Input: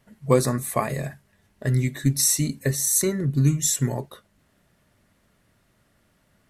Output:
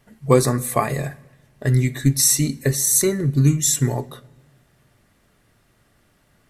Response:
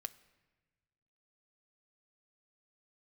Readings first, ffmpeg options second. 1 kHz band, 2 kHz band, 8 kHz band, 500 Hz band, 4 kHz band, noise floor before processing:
+4.5 dB, +4.0 dB, +4.0 dB, +4.0 dB, +4.0 dB, -65 dBFS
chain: -filter_complex "[0:a]asplit=2[a][b];[1:a]atrim=start_sample=2205[c];[b][c]afir=irnorm=-1:irlink=0,volume=11dB[d];[a][d]amix=inputs=2:normalize=0,volume=-6.5dB"

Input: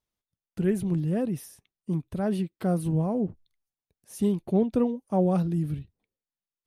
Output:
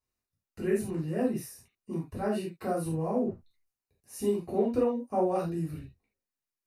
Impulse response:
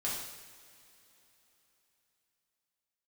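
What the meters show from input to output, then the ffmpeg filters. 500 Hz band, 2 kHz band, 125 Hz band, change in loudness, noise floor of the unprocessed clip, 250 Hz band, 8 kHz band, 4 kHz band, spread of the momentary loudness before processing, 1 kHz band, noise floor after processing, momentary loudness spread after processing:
0.0 dB, +1.0 dB, -8.5 dB, -3.5 dB, under -85 dBFS, -5.5 dB, +0.5 dB, n/a, 9 LU, +1.0 dB, under -85 dBFS, 10 LU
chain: -filter_complex "[0:a]acrossover=split=360[a][b];[a]acompressor=threshold=-32dB:ratio=6[c];[b]asuperstop=centerf=3300:order=4:qfactor=4.6[d];[c][d]amix=inputs=2:normalize=0[e];[1:a]atrim=start_sample=2205,atrim=end_sample=6615,asetrate=70560,aresample=44100[f];[e][f]afir=irnorm=-1:irlink=0,volume=1.5dB"

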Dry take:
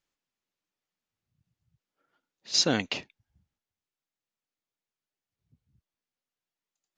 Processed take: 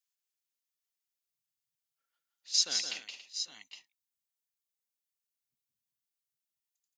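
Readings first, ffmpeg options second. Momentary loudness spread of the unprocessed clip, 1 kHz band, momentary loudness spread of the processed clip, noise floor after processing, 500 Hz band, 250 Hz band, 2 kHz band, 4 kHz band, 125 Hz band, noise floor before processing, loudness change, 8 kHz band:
11 LU, -16.0 dB, 14 LU, under -85 dBFS, -21.0 dB, -27.0 dB, -9.0 dB, -2.0 dB, under -30 dB, under -85 dBFS, -5.0 dB, +0.5 dB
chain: -filter_complex "[0:a]aderivative,asplit=2[a][b];[b]aecho=0:1:171|221|280|796|815|816:0.531|0.211|0.2|0.112|0.237|0.178[c];[a][c]amix=inputs=2:normalize=0"

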